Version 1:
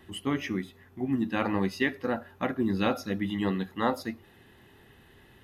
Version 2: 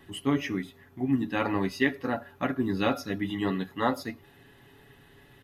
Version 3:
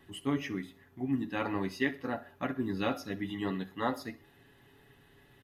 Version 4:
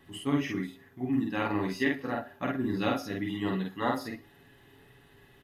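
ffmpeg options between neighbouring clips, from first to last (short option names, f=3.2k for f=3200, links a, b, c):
-af "aecho=1:1:7.1:0.53"
-af "aecho=1:1:63|126|189:0.112|0.0482|0.0207,volume=-5.5dB"
-filter_complex "[0:a]asplit=2[a][b];[b]adelay=48,volume=-2dB[c];[a][c]amix=inputs=2:normalize=0,volume=1dB"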